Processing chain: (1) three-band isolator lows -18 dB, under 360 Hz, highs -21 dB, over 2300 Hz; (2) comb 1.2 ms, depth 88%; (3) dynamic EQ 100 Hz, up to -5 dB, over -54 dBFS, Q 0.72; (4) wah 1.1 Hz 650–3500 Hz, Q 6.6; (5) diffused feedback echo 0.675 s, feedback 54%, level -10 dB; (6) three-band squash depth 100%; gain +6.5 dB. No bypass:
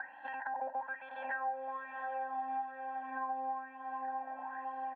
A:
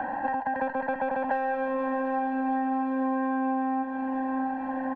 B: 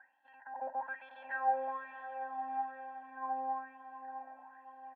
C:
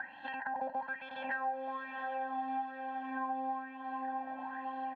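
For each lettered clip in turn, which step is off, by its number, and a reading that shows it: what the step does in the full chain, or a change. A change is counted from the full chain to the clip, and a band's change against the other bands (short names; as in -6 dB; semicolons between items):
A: 4, 250 Hz band +19.0 dB; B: 6, crest factor change +5.5 dB; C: 1, 250 Hz band +8.0 dB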